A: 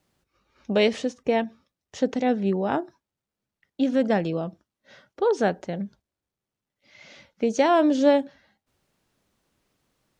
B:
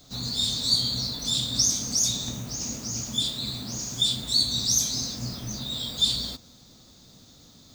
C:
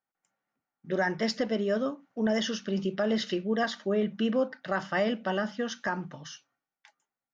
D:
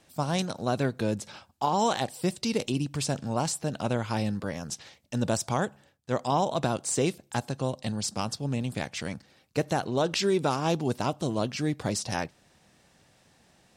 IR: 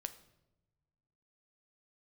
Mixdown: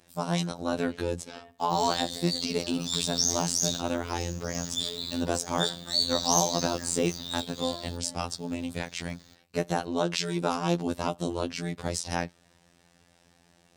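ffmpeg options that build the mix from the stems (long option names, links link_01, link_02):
-filter_complex "[0:a]acompressor=threshold=-30dB:ratio=6,volume=-11dB,asplit=3[link_01][link_02][link_03];[link_02]volume=-5dB[link_04];[1:a]adelay=1600,volume=-1dB[link_05];[2:a]alimiter=level_in=1dB:limit=-24dB:level=0:latency=1:release=275,volume=-1dB,adelay=950,volume=-6.5dB[link_06];[3:a]volume=2.5dB[link_07];[link_03]apad=whole_len=416354[link_08];[link_05][link_08]sidechaincompress=threshold=-50dB:ratio=3:attack=16:release=209[link_09];[link_04]aecho=0:1:87|174|261:1|0.16|0.0256[link_10];[link_01][link_09][link_06][link_07][link_10]amix=inputs=5:normalize=0,afftfilt=real='hypot(re,im)*cos(PI*b)':imag='0':win_size=2048:overlap=0.75"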